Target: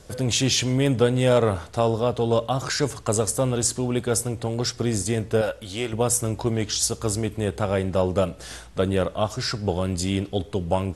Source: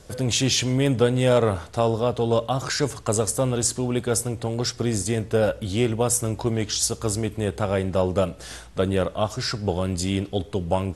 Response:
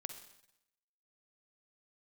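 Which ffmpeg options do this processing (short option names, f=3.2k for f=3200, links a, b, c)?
-filter_complex "[0:a]asettb=1/sr,asplit=3[a][b][c];[a]atrim=end=5.414[d];[b]atrim=start=5.41:end=5.93,asetpts=PTS-STARTPTS,afade=t=in:d=0.004:c=qsin,afade=t=out:st=0.516:d=0.004:c=qsin,equalizer=f=140:w=0.38:g=-11[e];[c]atrim=start=5.926[f];[d][e]acrossfade=d=0.004:c1=hsin:c2=qsin[g];[g][f]acrossfade=d=0.004:c1=qsin:c2=hsin"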